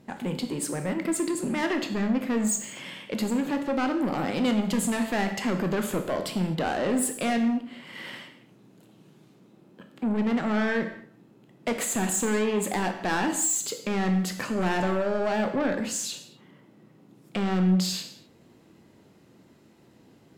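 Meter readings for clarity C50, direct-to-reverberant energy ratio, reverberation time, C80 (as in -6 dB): 9.5 dB, 6.0 dB, not exponential, 11.5 dB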